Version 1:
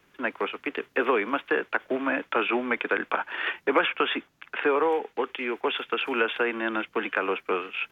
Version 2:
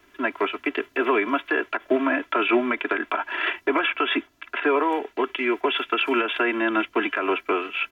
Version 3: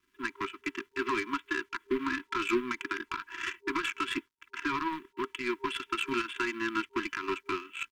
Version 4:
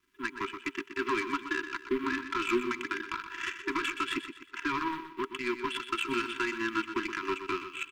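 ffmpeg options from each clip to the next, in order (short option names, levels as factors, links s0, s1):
-af "alimiter=limit=0.15:level=0:latency=1:release=132,aecho=1:1:3:0.89,volume=1.41"
-af "acrusher=bits=8:mix=0:aa=0.5,aeval=exprs='0.376*(cos(1*acos(clip(val(0)/0.376,-1,1)))-cos(1*PI/2))+0.0188*(cos(5*acos(clip(val(0)/0.376,-1,1)))-cos(5*PI/2))+0.0473*(cos(7*acos(clip(val(0)/0.376,-1,1)))-cos(7*PI/2))':c=same,afftfilt=real='re*(1-between(b*sr/4096,400,930))':imag='im*(1-between(b*sr/4096,400,930))':win_size=4096:overlap=0.75,volume=0.398"
-af "aecho=1:1:123|246|369|492:0.316|0.12|0.0457|0.0174"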